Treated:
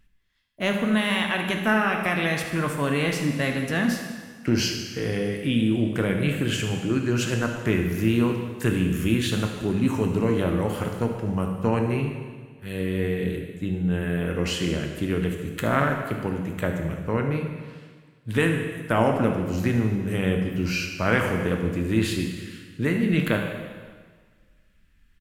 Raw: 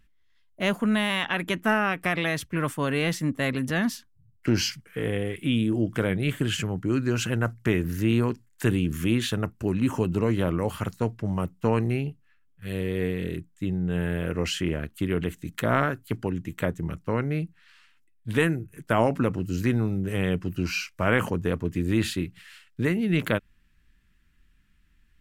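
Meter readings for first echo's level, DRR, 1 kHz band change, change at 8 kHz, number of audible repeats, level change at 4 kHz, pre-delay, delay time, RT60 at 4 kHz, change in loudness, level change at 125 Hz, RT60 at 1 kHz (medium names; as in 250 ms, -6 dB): -13.0 dB, 2.5 dB, +2.0 dB, +1.5 dB, 1, +2.0 dB, 6 ms, 74 ms, 1.5 s, +2.0 dB, +1.5 dB, 1.6 s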